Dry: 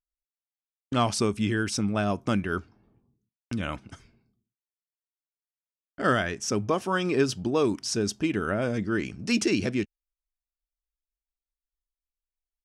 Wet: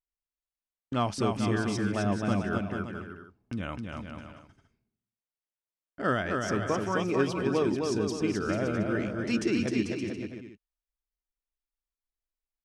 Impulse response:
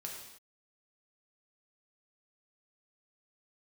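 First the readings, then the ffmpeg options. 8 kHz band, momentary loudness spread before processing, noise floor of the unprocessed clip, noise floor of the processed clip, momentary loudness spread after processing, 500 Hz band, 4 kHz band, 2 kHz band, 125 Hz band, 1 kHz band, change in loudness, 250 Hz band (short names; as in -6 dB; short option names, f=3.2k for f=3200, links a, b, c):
-8.0 dB, 8 LU, under -85 dBFS, under -85 dBFS, 13 LU, -1.5 dB, -6.0 dB, -3.0 dB, -1.0 dB, -2.0 dB, -2.5 dB, -1.0 dB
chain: -filter_complex "[0:a]highshelf=f=3.8k:g=-9,asplit=2[a][b];[b]aecho=0:1:260|442|569.4|658.6|721:0.631|0.398|0.251|0.158|0.1[c];[a][c]amix=inputs=2:normalize=0,volume=-3.5dB"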